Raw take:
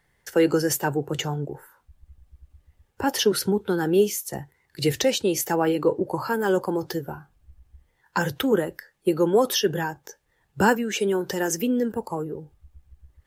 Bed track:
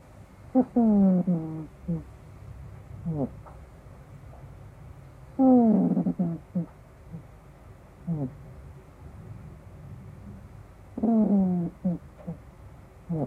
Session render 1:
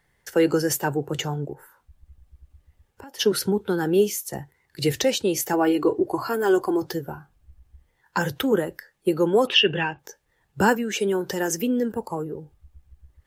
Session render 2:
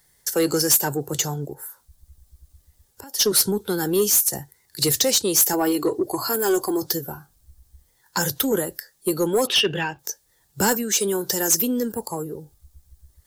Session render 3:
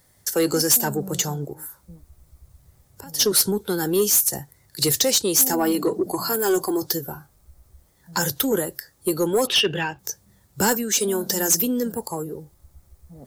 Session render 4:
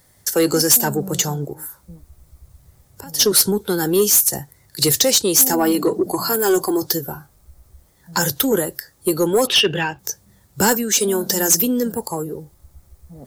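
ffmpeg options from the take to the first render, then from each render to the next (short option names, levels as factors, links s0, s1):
-filter_complex "[0:a]asplit=3[s0][s1][s2];[s0]afade=t=out:st=1.53:d=0.02[s3];[s1]acompressor=threshold=0.01:ratio=6:attack=3.2:release=140:knee=1:detection=peak,afade=t=in:st=1.53:d=0.02,afade=t=out:st=3.19:d=0.02[s4];[s2]afade=t=in:st=3.19:d=0.02[s5];[s3][s4][s5]amix=inputs=3:normalize=0,asettb=1/sr,asplit=3[s6][s7][s8];[s6]atrim=end=5.534[s9];[s7]atrim=start=5.53:end=6.82,asetpts=PTS-STARTPTS,afade=t=in:d=0.004:c=qsin,afade=t=out:st=1.286:d=0.004:c=qsin,aecho=1:1:2.8:0.65,atrim=end_sample=56889[s10];[s8]atrim=start=6.816[s11];[s9][s10]acrossfade=d=0.004:c1=hsin:c2=qsin[s12];[s12][s11]acrossfade=d=0.004:c1=qsin:c2=hsin,asettb=1/sr,asplit=3[s13][s14][s15];[s13]atrim=end=9.474[s16];[s14]atrim=start=9.47:end=9.99,asetpts=PTS-STARTPTS,afade=t=in:d=0.004:c=qsin,afade=t=out:st=0.516:d=0.004:c=qsin,lowpass=f=2700:t=q:w=8.1[s17];[s15]atrim=start=9.986[s18];[s16][s17]acrossfade=d=0.004:c1=hsin:c2=qsin[s19];[s19][s18]acrossfade=d=0.004:c1=qsin:c2=hsin"
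-af "aexciter=amount=5.7:drive=4.3:freq=3800,asoftclip=type=tanh:threshold=0.251"
-filter_complex "[1:a]volume=0.178[s0];[0:a][s0]amix=inputs=2:normalize=0"
-af "volume=1.58"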